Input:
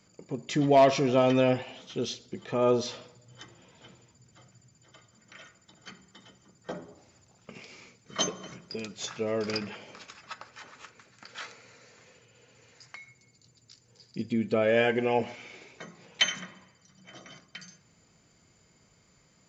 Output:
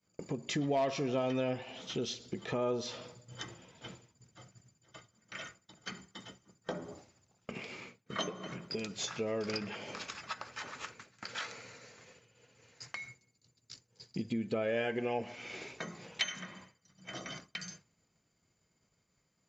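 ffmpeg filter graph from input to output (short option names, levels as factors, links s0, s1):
-filter_complex "[0:a]asettb=1/sr,asplit=3[s0][s1][s2];[s0]atrim=end=7.514[s3];[s1]atrim=start=7.51:end=8.72,asetpts=PTS-STARTPTS,afade=t=in:d=0.004:c=qsin,afade=t=out:st=1.206:d=0.004:c=qsin,highpass=87,equalizer=f=5800:w=1.3:g=-10[s4];[s2]atrim=start=8.716[s5];[s3][s4]acrossfade=d=0.004:c1=hsin:c2=qsin[s6];[s6][s5]acrossfade=d=0.004:c1=qsin:c2=hsin,agate=range=0.0224:threshold=0.00316:ratio=3:detection=peak,acompressor=threshold=0.00562:ratio=2.5,volume=2.11"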